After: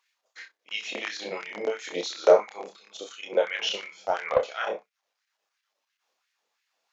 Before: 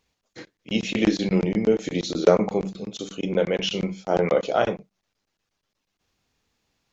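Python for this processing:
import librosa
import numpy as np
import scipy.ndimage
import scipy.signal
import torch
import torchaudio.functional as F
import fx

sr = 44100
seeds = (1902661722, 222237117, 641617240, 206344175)

y = fx.room_early_taps(x, sr, ms=(29, 65), db=(-4.0, -16.0))
y = fx.filter_lfo_highpass(y, sr, shape='sine', hz=2.9, low_hz=540.0, high_hz=1900.0, q=2.1)
y = y * (1.0 - 0.34 / 2.0 + 0.34 / 2.0 * np.cos(2.0 * np.pi * 0.54 * (np.arange(len(y)) / sr)))
y = fx.doppler_dist(y, sr, depth_ms=0.17, at=(3.71, 4.61))
y = y * librosa.db_to_amplitude(-3.0)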